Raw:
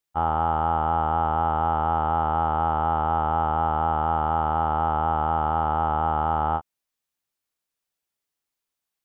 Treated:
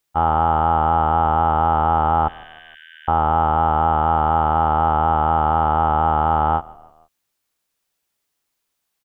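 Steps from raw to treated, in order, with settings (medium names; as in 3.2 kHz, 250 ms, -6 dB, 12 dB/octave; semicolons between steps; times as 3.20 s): in parallel at -1 dB: peak limiter -21.5 dBFS, peak gain reduction 9.5 dB; 2.28–3.08 s: on the sum: brick-wall FIR high-pass 1.5 kHz; frequency-shifting echo 156 ms, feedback 51%, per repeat -31 Hz, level -23 dB; trim +3.5 dB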